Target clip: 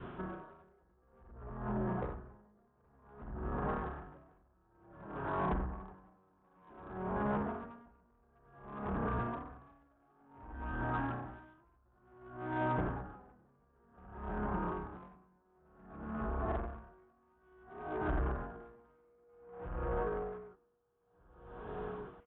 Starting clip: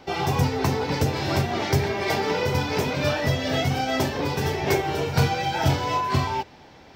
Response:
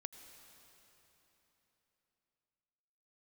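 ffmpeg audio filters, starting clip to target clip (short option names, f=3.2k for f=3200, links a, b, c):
-filter_complex "[0:a]equalizer=f=2.6k:w=1.8:g=5,atempo=0.66,asplit=2[a][b];[b]aecho=0:1:729|1458:0.112|0.0236[c];[a][c]amix=inputs=2:normalize=0,aresample=8000,aresample=44100,acrusher=bits=8:mix=0:aa=0.5,acompressor=threshold=-41dB:ratio=2,aresample=16000,asoftclip=type=tanh:threshold=-31.5dB,aresample=44100,asetrate=20859,aresample=44100,adynamicequalizer=threshold=0.00158:dfrequency=700:dqfactor=1.7:tfrequency=700:tqfactor=1.7:attack=5:release=100:ratio=0.375:range=3.5:mode=boostabove:tftype=bell,aeval=exprs='val(0)*pow(10,-37*(0.5-0.5*cos(2*PI*0.55*n/s))/20)':c=same,volume=2.5dB"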